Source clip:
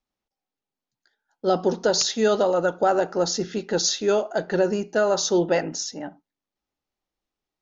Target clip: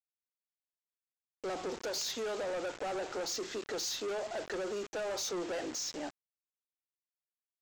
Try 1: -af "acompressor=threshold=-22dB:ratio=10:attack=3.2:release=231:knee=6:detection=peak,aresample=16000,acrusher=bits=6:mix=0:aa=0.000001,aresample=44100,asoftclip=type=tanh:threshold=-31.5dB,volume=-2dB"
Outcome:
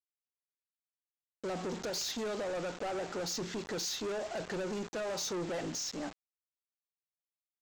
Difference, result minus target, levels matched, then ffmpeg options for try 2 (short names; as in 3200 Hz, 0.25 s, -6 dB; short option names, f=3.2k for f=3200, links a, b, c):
250 Hz band +3.0 dB
-af "acompressor=threshold=-22dB:ratio=10:attack=3.2:release=231:knee=6:detection=peak,highpass=f=290:w=0.5412,highpass=f=290:w=1.3066,aresample=16000,acrusher=bits=6:mix=0:aa=0.000001,aresample=44100,asoftclip=type=tanh:threshold=-31.5dB,volume=-2dB"